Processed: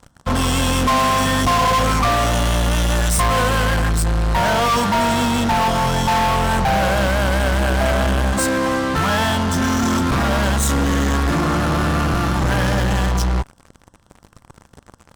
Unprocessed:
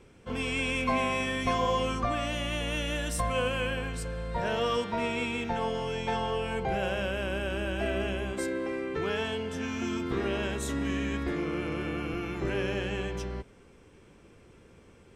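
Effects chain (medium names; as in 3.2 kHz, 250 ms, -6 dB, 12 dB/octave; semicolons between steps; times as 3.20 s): static phaser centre 980 Hz, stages 4; in parallel at -5 dB: fuzz box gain 44 dB, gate -53 dBFS; on the sum: trim +1.5 dB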